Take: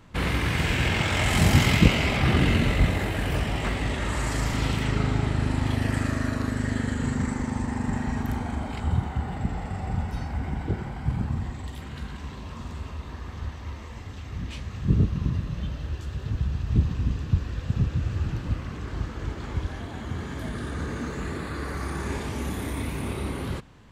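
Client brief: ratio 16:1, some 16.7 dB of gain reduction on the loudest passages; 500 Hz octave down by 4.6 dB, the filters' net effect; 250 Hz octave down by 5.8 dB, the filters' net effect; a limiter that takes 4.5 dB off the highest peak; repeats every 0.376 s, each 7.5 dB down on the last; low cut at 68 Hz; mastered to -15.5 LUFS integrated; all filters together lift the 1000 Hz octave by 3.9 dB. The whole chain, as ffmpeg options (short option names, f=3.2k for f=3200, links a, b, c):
-af "highpass=68,equalizer=f=250:t=o:g=-7,equalizer=f=500:t=o:g=-6,equalizer=f=1k:t=o:g=7,acompressor=threshold=-31dB:ratio=16,alimiter=level_in=2.5dB:limit=-24dB:level=0:latency=1,volume=-2.5dB,aecho=1:1:376|752|1128|1504|1880:0.422|0.177|0.0744|0.0312|0.0131,volume=21dB"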